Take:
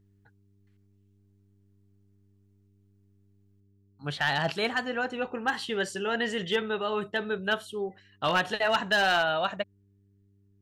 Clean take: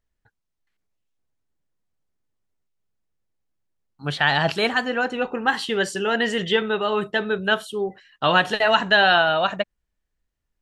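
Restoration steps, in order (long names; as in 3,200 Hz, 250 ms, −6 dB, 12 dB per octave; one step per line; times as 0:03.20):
clipped peaks rebuilt −17.5 dBFS
hum removal 99.3 Hz, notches 4
level 0 dB, from 0:03.60 +7 dB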